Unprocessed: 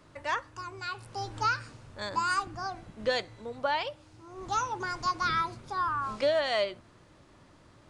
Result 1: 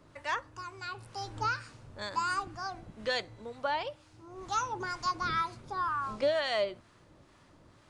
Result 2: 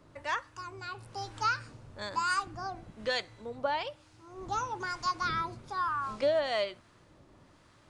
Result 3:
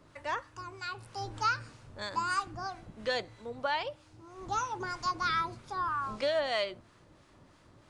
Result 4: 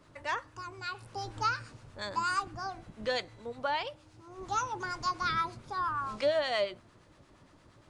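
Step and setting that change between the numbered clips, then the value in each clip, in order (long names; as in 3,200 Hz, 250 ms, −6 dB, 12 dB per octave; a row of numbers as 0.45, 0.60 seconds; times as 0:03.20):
two-band tremolo in antiphase, speed: 2.1, 1.1, 3.1, 8.6 Hertz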